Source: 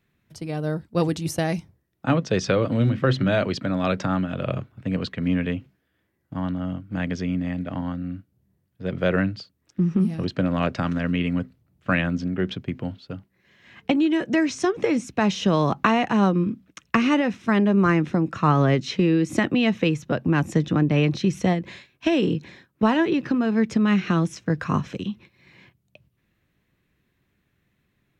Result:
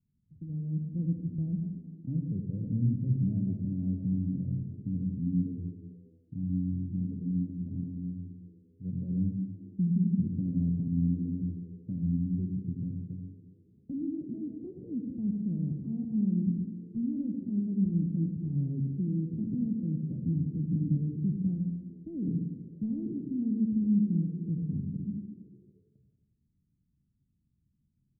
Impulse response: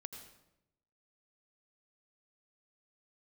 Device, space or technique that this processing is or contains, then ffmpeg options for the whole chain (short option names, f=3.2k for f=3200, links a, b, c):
club heard from the street: -filter_complex "[0:a]alimiter=limit=-14.5dB:level=0:latency=1:release=29,lowpass=f=230:w=0.5412,lowpass=f=230:w=1.3066[a];[1:a]atrim=start_sample=2205[b];[a][b]afir=irnorm=-1:irlink=0,asplit=4[c][d][e][f];[d]adelay=227,afreqshift=75,volume=-23.5dB[g];[e]adelay=454,afreqshift=150,volume=-31.2dB[h];[f]adelay=681,afreqshift=225,volume=-39dB[i];[c][g][h][i]amix=inputs=4:normalize=0"